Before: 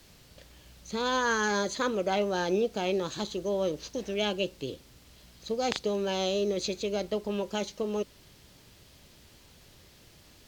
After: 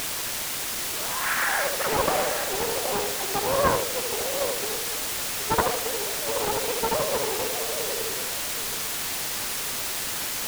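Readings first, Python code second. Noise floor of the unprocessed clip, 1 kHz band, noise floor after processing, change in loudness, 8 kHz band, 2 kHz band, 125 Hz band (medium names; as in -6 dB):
-57 dBFS, +6.5 dB, -30 dBFS, +5.0 dB, +15.5 dB, +7.0 dB, +2.5 dB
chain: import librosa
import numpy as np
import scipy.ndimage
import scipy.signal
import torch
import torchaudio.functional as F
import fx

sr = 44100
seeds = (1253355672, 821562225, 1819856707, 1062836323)

y = fx.sine_speech(x, sr)
y = y * (1.0 - 0.8 / 2.0 + 0.8 / 2.0 * np.cos(2.0 * np.pi * 0.57 * (np.arange(len(y)) / sr)))
y = fx.dynamic_eq(y, sr, hz=580.0, q=0.89, threshold_db=-42.0, ratio=4.0, max_db=-3)
y = scipy.signal.sosfilt(scipy.signal.butter(4, 2800.0, 'lowpass', fs=sr, output='sos'), y)
y = fx.echo_feedback(y, sr, ms=77, feedback_pct=42, wet_db=-4)
y = fx.quant_dither(y, sr, seeds[0], bits=6, dither='triangular')
y = y + 10.0 ** (-9.5 / 20.0) * np.pad(y, (int(773 * sr / 1000.0), 0))[:len(y)]
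y = fx.doppler_dist(y, sr, depth_ms=0.97)
y = y * librosa.db_to_amplitude(7.5)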